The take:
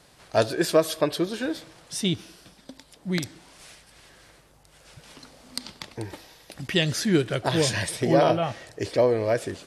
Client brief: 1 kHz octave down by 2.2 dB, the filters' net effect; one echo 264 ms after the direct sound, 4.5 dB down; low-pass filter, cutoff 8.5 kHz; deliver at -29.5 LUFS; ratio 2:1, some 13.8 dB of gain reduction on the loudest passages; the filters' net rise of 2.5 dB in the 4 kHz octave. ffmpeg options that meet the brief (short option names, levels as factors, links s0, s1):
-af "lowpass=8500,equalizer=f=1000:t=o:g=-3.5,equalizer=f=4000:t=o:g=3.5,acompressor=threshold=0.00794:ratio=2,aecho=1:1:264:0.596,volume=2.37"